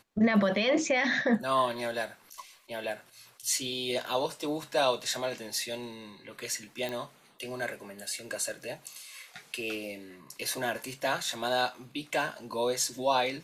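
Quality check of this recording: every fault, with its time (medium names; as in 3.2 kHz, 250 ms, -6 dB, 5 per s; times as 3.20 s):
6.89 s: pop -21 dBFS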